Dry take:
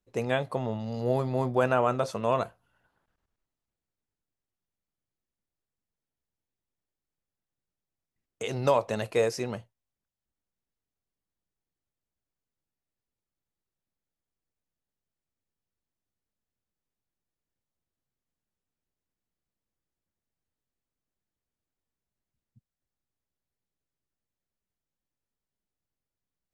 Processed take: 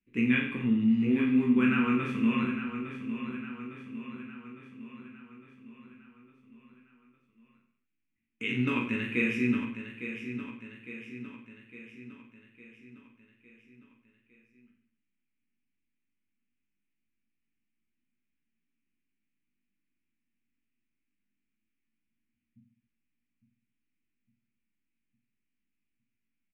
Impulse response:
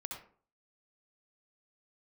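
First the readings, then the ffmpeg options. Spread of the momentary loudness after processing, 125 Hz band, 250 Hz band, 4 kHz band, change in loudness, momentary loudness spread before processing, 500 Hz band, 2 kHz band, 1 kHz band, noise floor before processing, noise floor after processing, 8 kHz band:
22 LU, -2.5 dB, +10.5 dB, -0.5 dB, -0.5 dB, 10 LU, -10.5 dB, +6.0 dB, -9.0 dB, under -85 dBFS, -82 dBFS, under -10 dB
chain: -filter_complex "[0:a]bass=f=250:g=-3,treble=f=4k:g=15,asplit=2[a][b];[b]aecho=0:1:40|86|138.9|199.7|269.7:0.631|0.398|0.251|0.158|0.1[c];[a][c]amix=inputs=2:normalize=0,flanger=delay=16.5:depth=4.9:speed=0.22,firequalizer=gain_entry='entry(150,0);entry(230,15);entry(630,-29);entry(1100,-6);entry(2400,11);entry(4400,-28)':delay=0.05:min_phase=1,asplit=2[d][e];[e]aecho=0:1:857|1714|2571|3428|4285|5142:0.316|0.174|0.0957|0.0526|0.0289|0.0159[f];[d][f]amix=inputs=2:normalize=0"

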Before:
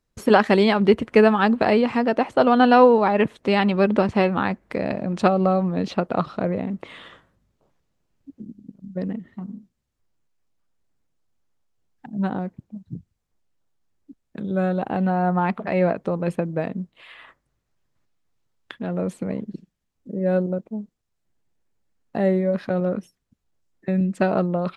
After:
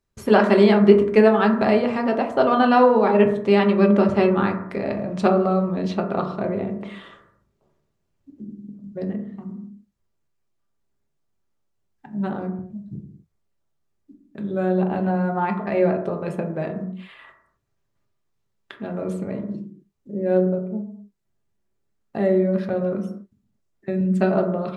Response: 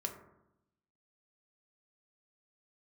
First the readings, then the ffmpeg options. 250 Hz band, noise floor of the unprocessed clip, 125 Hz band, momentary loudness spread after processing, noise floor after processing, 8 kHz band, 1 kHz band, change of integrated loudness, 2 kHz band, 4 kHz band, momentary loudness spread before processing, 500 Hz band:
+1.0 dB, -76 dBFS, 0.0 dB, 20 LU, -72 dBFS, n/a, -1.0 dB, +0.5 dB, -1.5 dB, -2.5 dB, 18 LU, +1.5 dB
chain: -filter_complex "[1:a]atrim=start_sample=2205,afade=t=out:st=0.32:d=0.01,atrim=end_sample=14553[a];[0:a][a]afir=irnorm=-1:irlink=0,volume=-1dB"

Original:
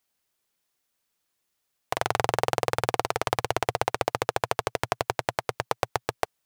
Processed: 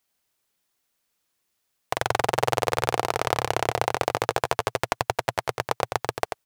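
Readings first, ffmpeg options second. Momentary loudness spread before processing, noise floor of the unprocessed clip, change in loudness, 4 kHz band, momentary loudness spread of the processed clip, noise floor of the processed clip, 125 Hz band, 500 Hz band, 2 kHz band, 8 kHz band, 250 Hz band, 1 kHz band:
5 LU, -78 dBFS, +2.0 dB, +2.5 dB, 5 LU, -76 dBFS, +2.0 dB, +2.0 dB, +2.5 dB, +2.5 dB, +2.0 dB, +2.0 dB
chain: -af "aecho=1:1:89:0.447,volume=1.5dB"

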